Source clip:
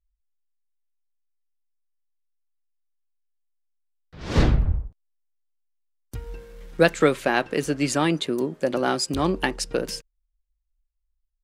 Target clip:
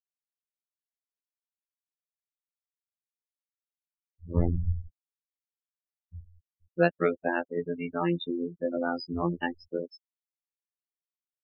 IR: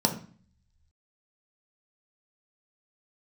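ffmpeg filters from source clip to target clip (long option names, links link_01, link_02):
-filter_complex "[0:a]acrossover=split=5200[link_01][link_02];[link_02]acompressor=threshold=-45dB:ratio=4:attack=1:release=60[link_03];[link_01][link_03]amix=inputs=2:normalize=0,afftfilt=real='re*gte(hypot(re,im),0.141)':imag='im*gte(hypot(re,im),0.141)':win_size=1024:overlap=0.75,afftfilt=real='hypot(re,im)*cos(PI*b)':imag='0':win_size=2048:overlap=0.75,volume=-2.5dB"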